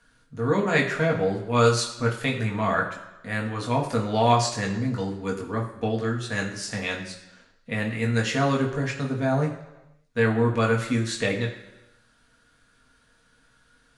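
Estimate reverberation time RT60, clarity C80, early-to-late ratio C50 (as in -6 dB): 1.0 s, 10.5 dB, 8.5 dB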